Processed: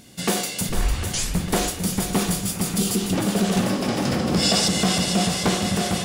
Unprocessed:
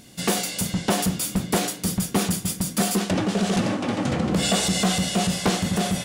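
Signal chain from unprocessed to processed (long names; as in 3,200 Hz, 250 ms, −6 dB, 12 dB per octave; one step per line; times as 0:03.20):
0:00.69: tape start 0.74 s
0:02.50–0:03.10: healed spectral selection 500–2,700 Hz before
0:03.69–0:04.68: parametric band 5,100 Hz +13 dB 0.25 octaves
feedback echo with a long and a short gap by turns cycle 752 ms, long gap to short 1.5 to 1, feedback 41%, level −8 dB
convolution reverb RT60 0.50 s, pre-delay 50 ms, DRR 11.5 dB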